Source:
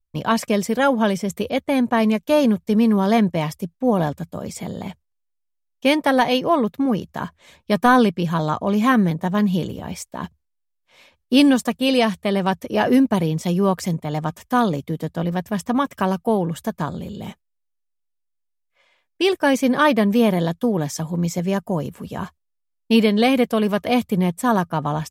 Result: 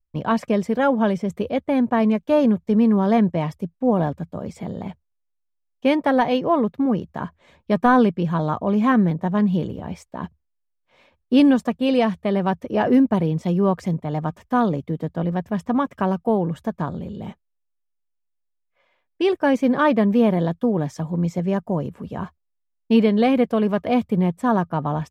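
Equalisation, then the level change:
low-pass filter 1,300 Hz 6 dB per octave
0.0 dB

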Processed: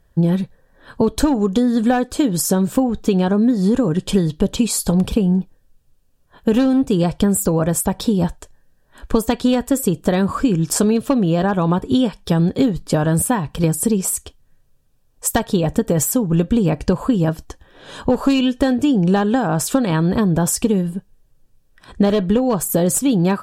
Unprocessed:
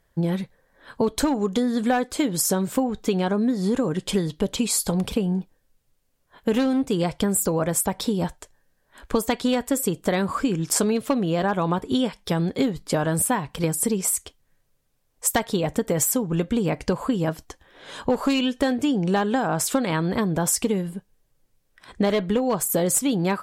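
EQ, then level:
Butterworth band-reject 2,100 Hz, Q 7.6
low-shelf EQ 140 Hz +5 dB
low-shelf EQ 410 Hz +5 dB
+2.0 dB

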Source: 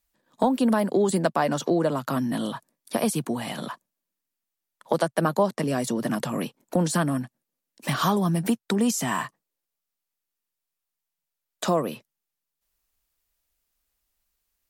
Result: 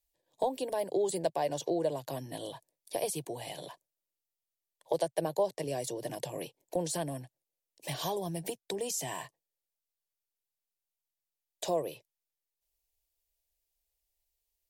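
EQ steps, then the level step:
phaser with its sweep stopped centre 540 Hz, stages 4
−5.5 dB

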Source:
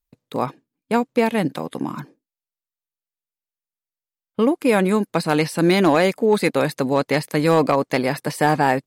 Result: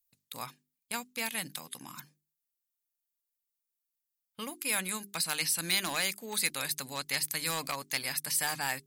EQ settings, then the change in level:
first-order pre-emphasis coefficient 0.9
parametric band 410 Hz −12.5 dB 2.1 octaves
mains-hum notches 50/100/150/200/250/300/350/400 Hz
+4.0 dB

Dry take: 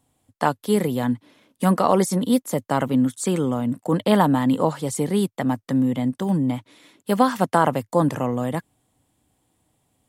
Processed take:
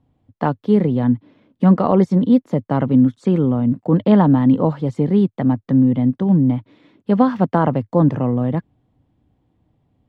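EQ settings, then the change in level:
high-frequency loss of the air 240 metres
low-shelf EQ 440 Hz +12 dB
−2.5 dB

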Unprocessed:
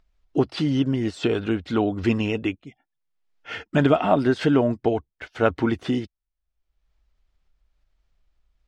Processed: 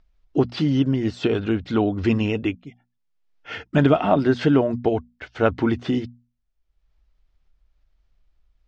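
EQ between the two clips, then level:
low-pass filter 6,800 Hz 24 dB per octave
low-shelf EQ 240 Hz +4.5 dB
mains-hum notches 60/120/180/240 Hz
0.0 dB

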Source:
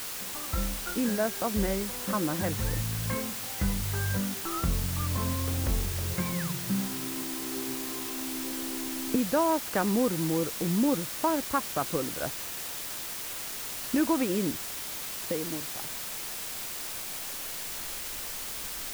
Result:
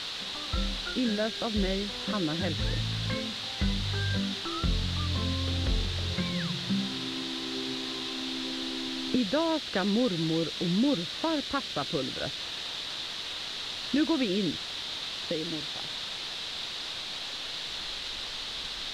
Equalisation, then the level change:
dynamic equaliser 940 Hz, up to −7 dB, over −45 dBFS, Q 1.6
low-pass with resonance 3,800 Hz, resonance Q 4.4
parametric band 2,300 Hz −3 dB 0.23 octaves
0.0 dB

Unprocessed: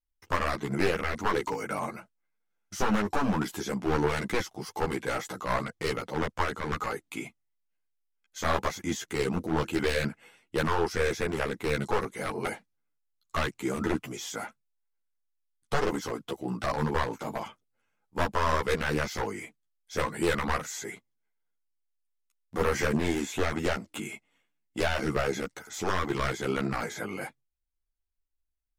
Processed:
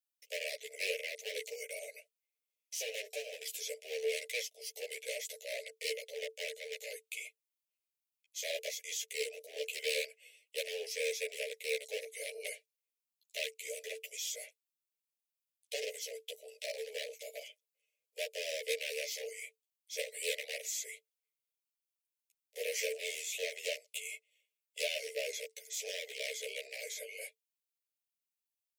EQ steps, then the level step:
Chebyshev high-pass with heavy ripple 430 Hz, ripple 9 dB
elliptic band-stop filter 560–2,400 Hz, stop band 60 dB
spectral tilt +3 dB per octave
+1.0 dB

